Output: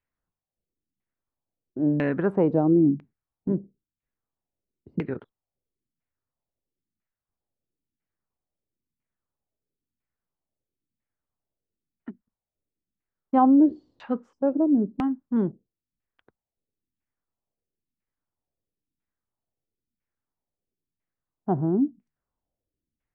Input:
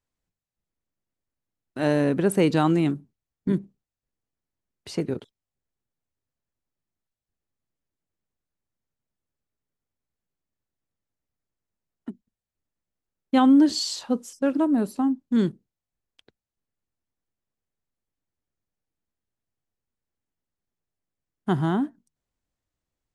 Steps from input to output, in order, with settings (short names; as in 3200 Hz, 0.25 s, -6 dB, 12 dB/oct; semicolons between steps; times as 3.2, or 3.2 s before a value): LFO low-pass saw down 1 Hz 210–2400 Hz; gain -3 dB